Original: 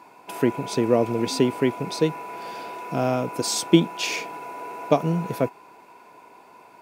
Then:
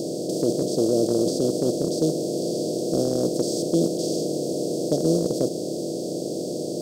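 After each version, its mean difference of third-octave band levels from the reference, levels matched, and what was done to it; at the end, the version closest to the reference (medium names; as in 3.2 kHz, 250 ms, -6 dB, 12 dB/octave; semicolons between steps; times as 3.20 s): 15.0 dB: spectral levelling over time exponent 0.2; elliptic band-stop 570–4500 Hz, stop band 60 dB; gate -12 dBFS, range -7 dB; peak limiter -8 dBFS, peak gain reduction 7 dB; trim -3 dB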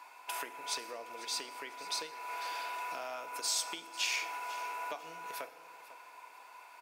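11.0 dB: compression 6:1, threshold -29 dBFS, peak gain reduction 18 dB; high-pass 1.1 kHz 12 dB/octave; feedback delay 497 ms, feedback 28%, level -16.5 dB; FDN reverb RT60 1.8 s, low-frequency decay 0.8×, high-frequency decay 0.5×, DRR 10.5 dB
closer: second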